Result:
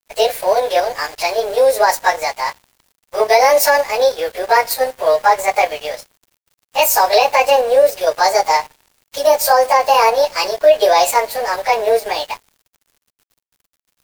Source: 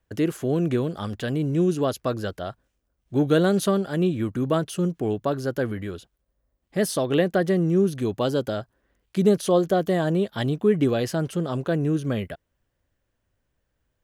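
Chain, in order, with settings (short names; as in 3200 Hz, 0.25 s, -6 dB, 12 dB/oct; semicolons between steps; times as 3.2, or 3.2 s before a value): pitch shift by moving bins +6.5 st; steep high-pass 510 Hz 36 dB/oct; on a send at -13 dB: reverb, pre-delay 3 ms; on the sum: added noise pink -60 dBFS; in parallel at 0 dB: level quantiser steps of 10 dB; on the sum: high shelf 2000 Hz +5.5 dB; crossover distortion -45 dBFS; maximiser +12.5 dB; gain -1 dB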